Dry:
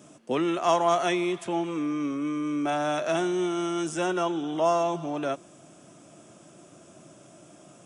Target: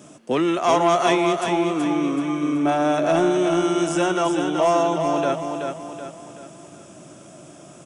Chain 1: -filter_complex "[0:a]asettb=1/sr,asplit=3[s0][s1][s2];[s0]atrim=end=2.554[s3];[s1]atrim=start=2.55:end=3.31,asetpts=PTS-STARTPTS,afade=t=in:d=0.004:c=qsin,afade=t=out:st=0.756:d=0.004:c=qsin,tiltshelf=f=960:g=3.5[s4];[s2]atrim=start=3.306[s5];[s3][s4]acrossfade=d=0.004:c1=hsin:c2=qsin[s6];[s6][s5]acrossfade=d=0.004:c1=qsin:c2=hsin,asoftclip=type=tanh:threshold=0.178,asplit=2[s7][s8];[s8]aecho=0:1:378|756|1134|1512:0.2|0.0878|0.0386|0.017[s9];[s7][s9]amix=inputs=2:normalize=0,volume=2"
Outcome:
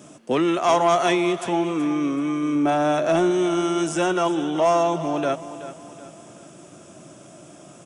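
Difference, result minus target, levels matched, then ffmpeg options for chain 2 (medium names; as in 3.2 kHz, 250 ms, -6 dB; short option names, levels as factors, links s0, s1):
echo-to-direct -8.5 dB
-filter_complex "[0:a]asettb=1/sr,asplit=3[s0][s1][s2];[s0]atrim=end=2.554[s3];[s1]atrim=start=2.55:end=3.31,asetpts=PTS-STARTPTS,afade=t=in:d=0.004:c=qsin,afade=t=out:st=0.756:d=0.004:c=qsin,tiltshelf=f=960:g=3.5[s4];[s2]atrim=start=3.306[s5];[s3][s4]acrossfade=d=0.004:c1=hsin:c2=qsin[s6];[s6][s5]acrossfade=d=0.004:c1=qsin:c2=hsin,asoftclip=type=tanh:threshold=0.178,asplit=2[s7][s8];[s8]aecho=0:1:378|756|1134|1512|1890:0.531|0.234|0.103|0.0452|0.0199[s9];[s7][s9]amix=inputs=2:normalize=0,volume=2"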